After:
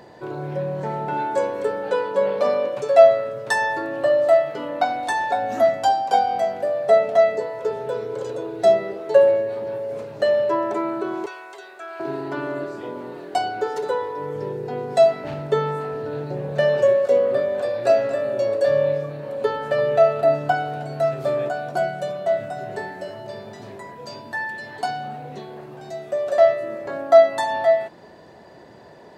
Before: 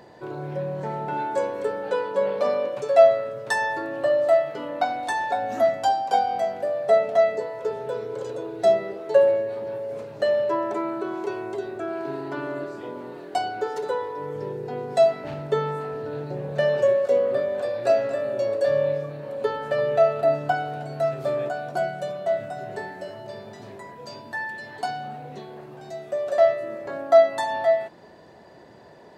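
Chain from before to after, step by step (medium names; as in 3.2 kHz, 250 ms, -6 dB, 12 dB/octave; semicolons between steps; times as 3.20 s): 11.26–12.00 s: high-pass 1.1 kHz 12 dB/octave; trim +3 dB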